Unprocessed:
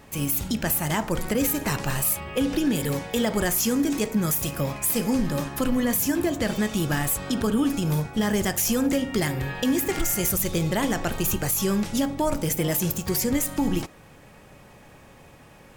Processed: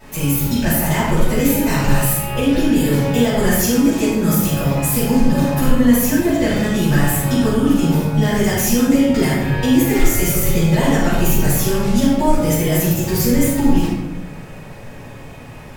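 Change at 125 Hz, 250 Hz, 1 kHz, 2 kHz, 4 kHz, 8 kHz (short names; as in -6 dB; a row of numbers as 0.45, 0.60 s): +11.0, +9.5, +8.0, +7.5, +6.0, +4.5 dB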